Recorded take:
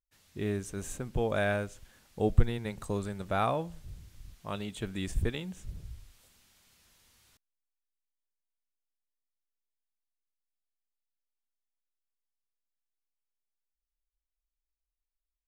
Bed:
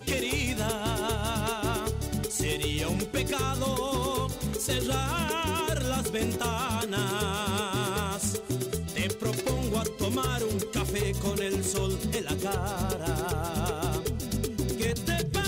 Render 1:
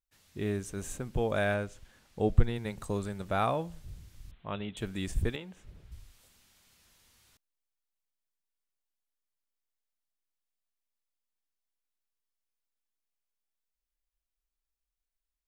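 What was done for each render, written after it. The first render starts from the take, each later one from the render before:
0:01.54–0:02.56: high-shelf EQ 8,000 Hz −7.5 dB
0:04.31–0:04.77: Butterworth low-pass 3,700 Hz 72 dB per octave
0:05.36–0:05.92: bass and treble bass −10 dB, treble −12 dB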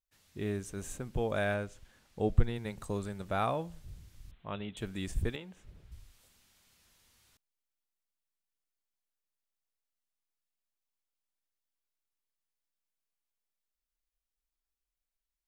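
level −2.5 dB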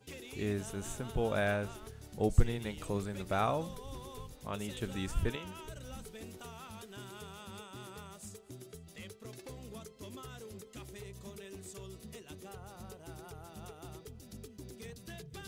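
mix in bed −19 dB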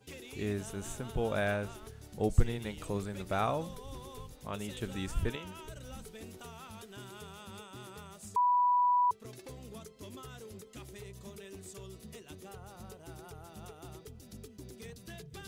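0:08.36–0:09.11: beep over 984 Hz −23.5 dBFS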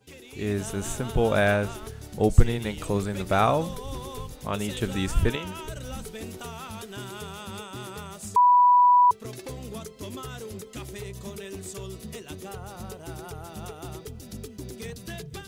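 automatic gain control gain up to 10 dB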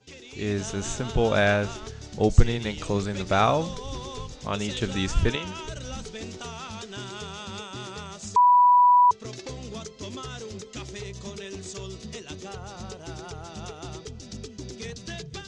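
Butterworth low-pass 6,600 Hz 36 dB per octave
high-shelf EQ 4,600 Hz +11 dB

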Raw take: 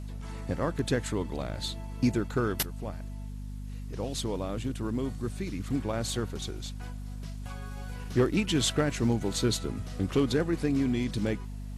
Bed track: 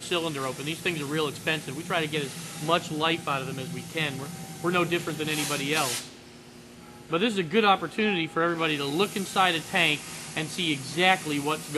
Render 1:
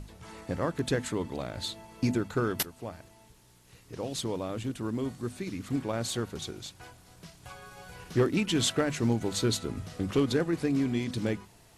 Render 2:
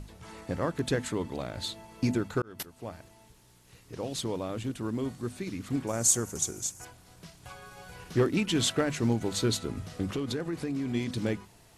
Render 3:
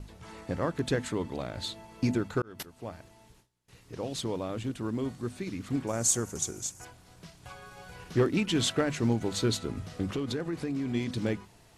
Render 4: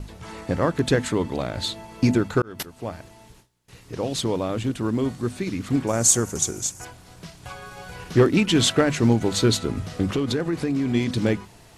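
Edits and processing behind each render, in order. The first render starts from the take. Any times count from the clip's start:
mains-hum notches 50/100/150/200/250 Hz
0:02.42–0:02.90: fade in; 0:05.87–0:06.85: high shelf with overshoot 5,100 Hz +10 dB, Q 3; 0:10.08–0:10.94: downward compressor, threshold −28 dBFS
noise gate with hold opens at −47 dBFS; high-shelf EQ 10,000 Hz −7.5 dB
level +8.5 dB

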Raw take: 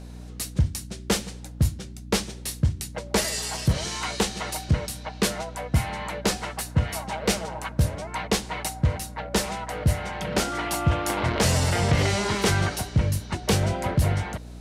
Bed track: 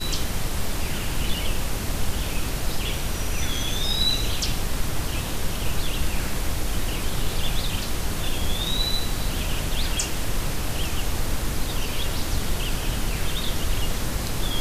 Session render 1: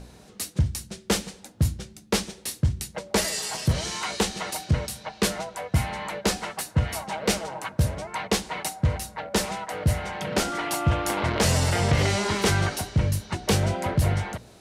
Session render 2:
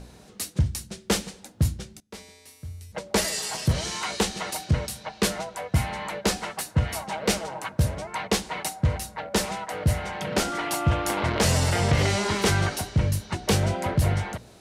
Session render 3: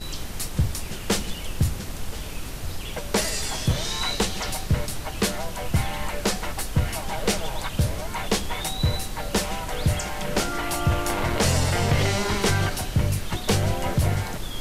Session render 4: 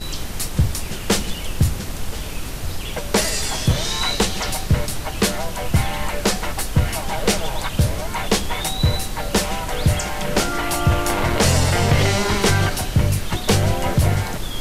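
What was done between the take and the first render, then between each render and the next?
hum removal 60 Hz, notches 5
0:02.00–0:02.92: tuned comb filter 87 Hz, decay 1.8 s, harmonics odd, mix 90%
mix in bed track −7 dB
level +5 dB

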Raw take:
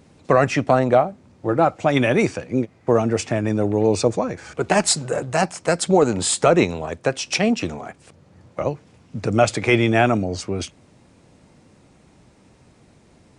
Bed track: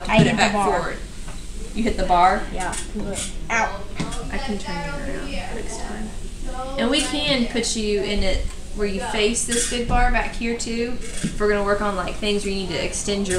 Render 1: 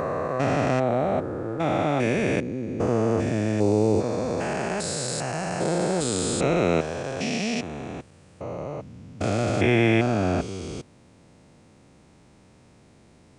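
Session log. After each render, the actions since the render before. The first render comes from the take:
spectrum averaged block by block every 400 ms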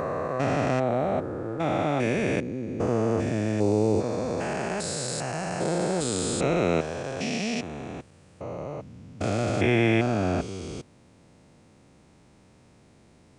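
level −2 dB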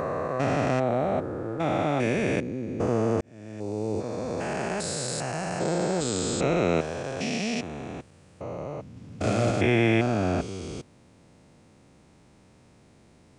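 0:03.21–0:04.61: fade in linear
0:05.59–0:06.77: linear-phase brick-wall low-pass 8,400 Hz
0:08.93–0:09.51: double-tracking delay 35 ms −2.5 dB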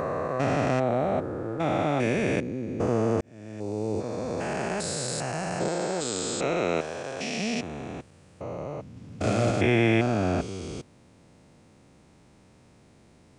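0:05.68–0:07.38: low-shelf EQ 220 Hz −11 dB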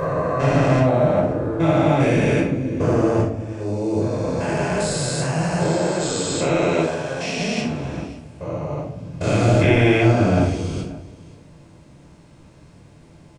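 single-tap delay 533 ms −20 dB
rectangular room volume 880 cubic metres, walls furnished, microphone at 5.2 metres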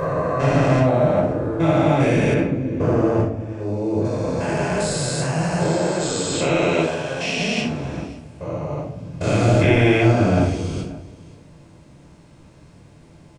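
0:02.34–0:04.05: high-shelf EQ 4,300 Hz −11.5 dB
0:06.33–0:07.69: parametric band 2,900 Hz +6 dB 0.55 octaves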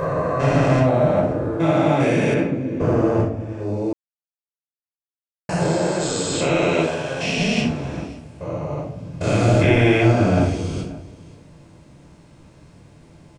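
0:01.57–0:02.82: high-pass filter 130 Hz
0:03.93–0:05.49: silence
0:07.23–0:07.71: low-shelf EQ 160 Hz +10 dB

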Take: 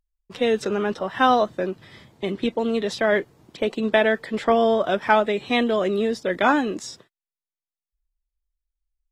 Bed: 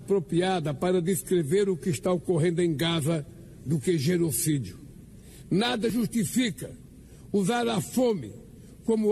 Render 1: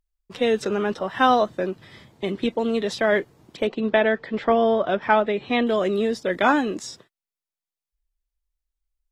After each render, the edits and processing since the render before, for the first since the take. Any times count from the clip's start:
0:03.67–0:05.67: high-frequency loss of the air 160 metres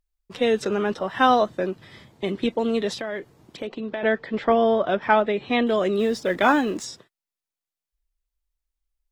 0:02.93–0:04.03: downward compressor 3 to 1, threshold −29 dBFS
0:05.99–0:06.85: mu-law and A-law mismatch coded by mu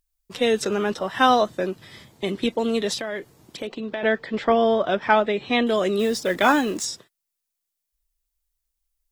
high-shelf EQ 4,900 Hz +11.5 dB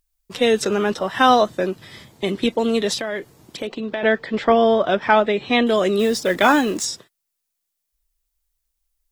level +3.5 dB
brickwall limiter −2 dBFS, peak gain reduction 2 dB

